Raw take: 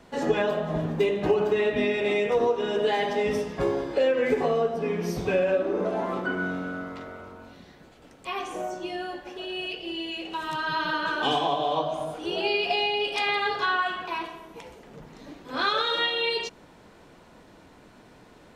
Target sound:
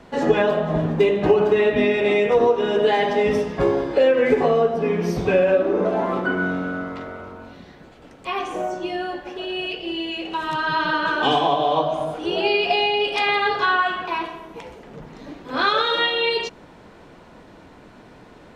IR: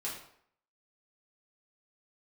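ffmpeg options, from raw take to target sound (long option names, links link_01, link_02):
-af "highshelf=frequency=5500:gain=-9.5,volume=6.5dB"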